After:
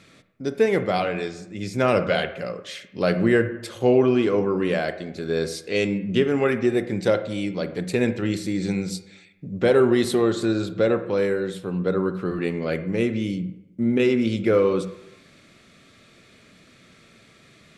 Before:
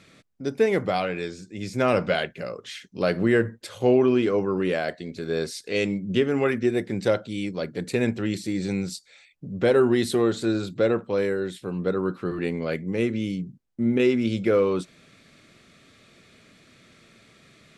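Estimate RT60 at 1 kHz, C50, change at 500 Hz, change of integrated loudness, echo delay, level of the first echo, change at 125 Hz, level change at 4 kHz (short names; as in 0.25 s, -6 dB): 0.85 s, 12.0 dB, +2.0 dB, +2.0 dB, none, none, +2.5 dB, +1.5 dB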